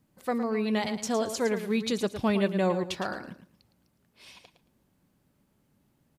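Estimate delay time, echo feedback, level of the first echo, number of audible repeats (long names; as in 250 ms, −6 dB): 111 ms, 20%, −10.0 dB, 2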